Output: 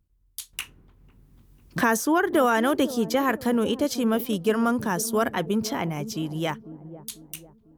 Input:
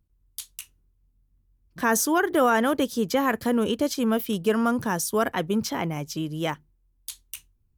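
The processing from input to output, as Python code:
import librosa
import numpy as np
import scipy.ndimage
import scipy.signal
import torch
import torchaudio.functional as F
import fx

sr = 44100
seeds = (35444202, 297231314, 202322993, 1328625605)

y = fx.echo_wet_lowpass(x, sr, ms=497, feedback_pct=43, hz=510.0, wet_db=-12.0)
y = fx.band_squash(y, sr, depth_pct=70, at=(0.53, 2.91))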